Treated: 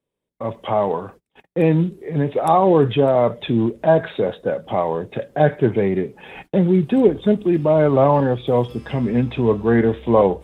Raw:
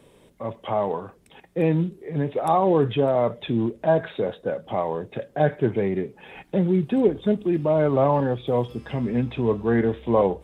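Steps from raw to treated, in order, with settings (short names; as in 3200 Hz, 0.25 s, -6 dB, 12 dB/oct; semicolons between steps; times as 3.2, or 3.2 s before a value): gate -46 dBFS, range -33 dB; gain +5 dB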